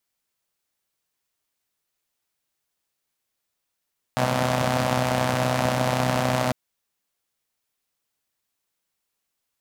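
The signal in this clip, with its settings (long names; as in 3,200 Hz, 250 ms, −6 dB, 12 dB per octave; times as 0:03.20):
pulse-train model of a four-cylinder engine, steady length 2.35 s, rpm 3,800, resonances 140/220/600 Hz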